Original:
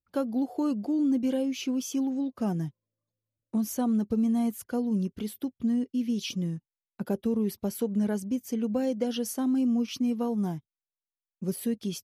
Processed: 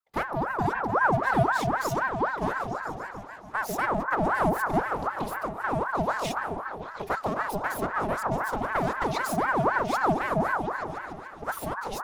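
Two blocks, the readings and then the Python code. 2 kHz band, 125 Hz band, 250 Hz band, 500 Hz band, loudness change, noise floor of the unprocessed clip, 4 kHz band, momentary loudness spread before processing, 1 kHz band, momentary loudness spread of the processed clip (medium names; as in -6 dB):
+21.0 dB, +3.5 dB, -7.5 dB, +4.5 dB, +1.5 dB, under -85 dBFS, -1.5 dB, 8 LU, +18.0 dB, 10 LU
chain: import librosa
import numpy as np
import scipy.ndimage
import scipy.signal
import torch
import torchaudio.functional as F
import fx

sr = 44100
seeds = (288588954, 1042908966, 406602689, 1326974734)

y = fx.lower_of_two(x, sr, delay_ms=3.1)
y = fx.echo_opening(y, sr, ms=145, hz=200, octaves=1, feedback_pct=70, wet_db=0)
y = fx.ring_lfo(y, sr, carrier_hz=860.0, swing_pct=55, hz=3.9)
y = y * librosa.db_to_amplitude(3.0)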